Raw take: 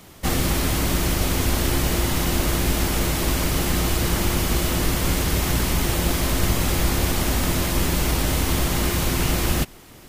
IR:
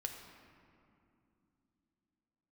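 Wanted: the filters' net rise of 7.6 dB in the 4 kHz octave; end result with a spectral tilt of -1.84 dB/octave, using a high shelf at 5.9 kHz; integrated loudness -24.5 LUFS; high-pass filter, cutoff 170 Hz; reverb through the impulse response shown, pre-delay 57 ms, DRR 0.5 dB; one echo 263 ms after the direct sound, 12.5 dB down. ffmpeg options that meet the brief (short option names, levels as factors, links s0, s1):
-filter_complex "[0:a]highpass=170,equalizer=f=4000:t=o:g=6.5,highshelf=f=5900:g=8.5,aecho=1:1:263:0.237,asplit=2[s0][s1];[1:a]atrim=start_sample=2205,adelay=57[s2];[s1][s2]afir=irnorm=-1:irlink=0,volume=1.06[s3];[s0][s3]amix=inputs=2:normalize=0,volume=0.355"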